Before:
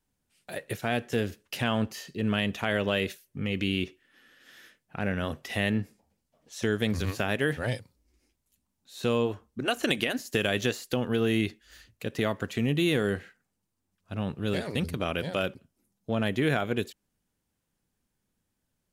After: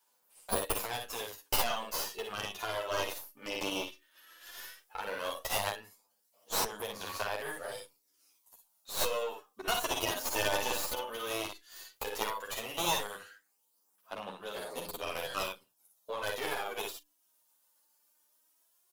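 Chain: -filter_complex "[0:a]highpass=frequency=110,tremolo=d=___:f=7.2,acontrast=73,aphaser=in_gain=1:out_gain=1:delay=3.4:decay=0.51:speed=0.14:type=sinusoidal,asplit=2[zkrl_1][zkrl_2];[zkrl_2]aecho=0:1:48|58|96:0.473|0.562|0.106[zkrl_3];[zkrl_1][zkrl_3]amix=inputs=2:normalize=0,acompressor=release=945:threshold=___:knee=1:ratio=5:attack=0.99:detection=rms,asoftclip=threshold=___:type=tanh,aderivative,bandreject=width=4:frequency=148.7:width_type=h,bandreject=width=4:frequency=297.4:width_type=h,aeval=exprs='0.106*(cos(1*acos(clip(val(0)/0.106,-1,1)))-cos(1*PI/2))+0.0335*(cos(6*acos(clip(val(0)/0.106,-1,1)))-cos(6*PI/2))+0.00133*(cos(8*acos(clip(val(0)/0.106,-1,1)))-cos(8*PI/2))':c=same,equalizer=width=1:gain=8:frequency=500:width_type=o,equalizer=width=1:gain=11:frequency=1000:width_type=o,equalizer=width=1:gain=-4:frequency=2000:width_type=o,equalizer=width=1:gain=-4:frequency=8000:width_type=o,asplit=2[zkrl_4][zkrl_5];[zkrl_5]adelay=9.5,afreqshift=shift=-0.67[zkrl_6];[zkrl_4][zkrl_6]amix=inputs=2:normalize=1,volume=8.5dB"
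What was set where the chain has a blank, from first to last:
0.33, -20dB, -17.5dB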